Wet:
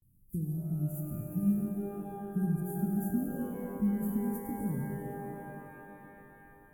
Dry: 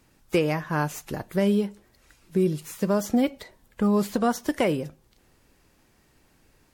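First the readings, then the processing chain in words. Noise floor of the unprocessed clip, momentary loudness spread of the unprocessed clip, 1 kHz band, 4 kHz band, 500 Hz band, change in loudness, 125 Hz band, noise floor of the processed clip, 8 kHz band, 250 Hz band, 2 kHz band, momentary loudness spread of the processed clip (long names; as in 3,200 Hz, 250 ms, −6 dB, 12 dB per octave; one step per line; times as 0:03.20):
−63 dBFS, 8 LU, −13.0 dB, below −30 dB, −15.5 dB, −8.5 dB, −3.0 dB, −59 dBFS, −12.5 dB, −6.0 dB, −16.5 dB, 16 LU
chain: inverse Chebyshev band-stop filter 740–3,700 Hz, stop band 70 dB
noise gate with hold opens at −56 dBFS
reverb with rising layers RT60 3.6 s, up +12 semitones, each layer −8 dB, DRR 0.5 dB
level −3 dB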